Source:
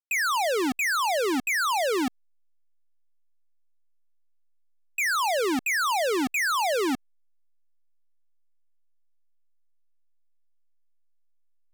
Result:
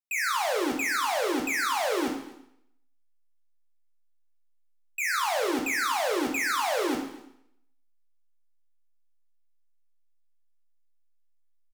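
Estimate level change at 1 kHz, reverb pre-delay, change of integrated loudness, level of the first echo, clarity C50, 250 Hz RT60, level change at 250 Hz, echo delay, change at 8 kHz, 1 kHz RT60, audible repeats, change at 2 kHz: -2.0 dB, 4 ms, -2.0 dB, -20.5 dB, 5.5 dB, 0.80 s, -2.0 dB, 247 ms, -2.0 dB, 0.80 s, 1, -2.5 dB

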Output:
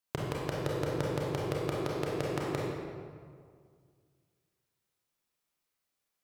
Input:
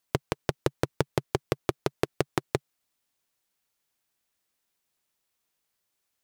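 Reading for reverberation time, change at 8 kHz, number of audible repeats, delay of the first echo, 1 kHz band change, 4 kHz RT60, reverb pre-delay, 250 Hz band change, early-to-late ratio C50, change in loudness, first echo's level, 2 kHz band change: 2.0 s, -5.5 dB, no echo, no echo, -3.5 dB, 1.2 s, 26 ms, -2.0 dB, -1.5 dB, -3.0 dB, no echo, -4.0 dB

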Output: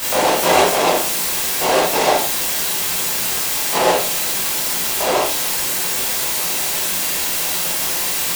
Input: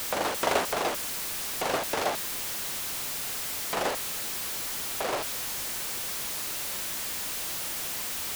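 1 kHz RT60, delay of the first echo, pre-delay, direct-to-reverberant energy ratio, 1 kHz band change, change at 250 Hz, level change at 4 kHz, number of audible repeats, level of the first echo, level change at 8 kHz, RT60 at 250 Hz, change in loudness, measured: 0.45 s, no echo, 17 ms, -7.5 dB, +13.5 dB, +13.0 dB, +13.0 dB, no echo, no echo, +13.5 dB, 0.45 s, +13.0 dB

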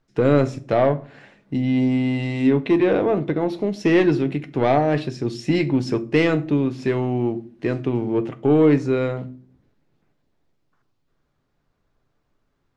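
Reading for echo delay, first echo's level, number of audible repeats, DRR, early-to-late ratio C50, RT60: no echo, no echo, no echo, 9.0 dB, 19.5 dB, 0.45 s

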